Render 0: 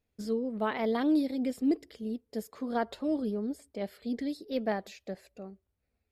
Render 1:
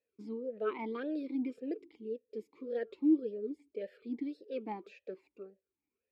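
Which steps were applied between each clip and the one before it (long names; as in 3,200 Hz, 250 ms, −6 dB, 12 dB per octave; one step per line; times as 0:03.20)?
gain on a spectral selection 0:02.02–0:03.87, 620–1,700 Hz −9 dB
formant filter swept between two vowels e-u 1.8 Hz
level +6 dB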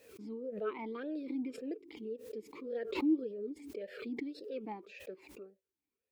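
background raised ahead of every attack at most 72 dB per second
level −3 dB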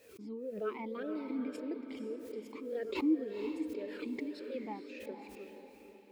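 feedback delay with all-pass diffusion 478 ms, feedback 45%, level −7.5 dB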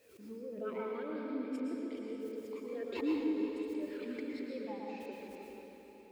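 dense smooth reverb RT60 1.7 s, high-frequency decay 0.8×, pre-delay 100 ms, DRR −1 dB
level −4.5 dB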